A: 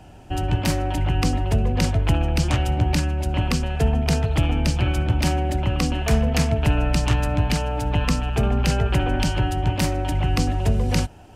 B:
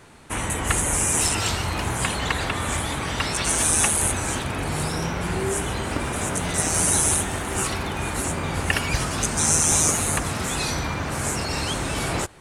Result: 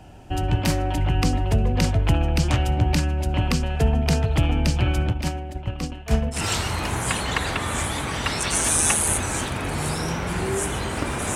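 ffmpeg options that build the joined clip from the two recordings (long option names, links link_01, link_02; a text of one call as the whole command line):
ffmpeg -i cue0.wav -i cue1.wav -filter_complex "[0:a]asettb=1/sr,asplit=3[link_01][link_02][link_03];[link_01]atrim=end=5.104[link_04];[link_02]atrim=start=5.1:end=6.45,asetpts=PTS-STARTPTS,afade=type=in:duration=0.004:curve=qsin,afade=type=out:start_time=1.346:duration=0.004:curve=qsin,agate=range=-33dB:threshold=-15dB:ratio=3:release=100:detection=peak[link_05];[link_03]atrim=start=6.446[link_06];[link_04][link_05]acrossfade=duration=0.004:curve1=hsin:curve2=qsin[link_07];[link_07][link_06]acrossfade=duration=0.004:curve1=qsin:curve2=hsin,apad=whole_dur=11.35,atrim=end=11.35,atrim=end=6.45,asetpts=PTS-STARTPTS[link_08];[1:a]atrim=start=1.25:end=6.29,asetpts=PTS-STARTPTS[link_09];[link_08][link_09]acrossfade=duration=0.14:curve1=tri:curve2=tri" out.wav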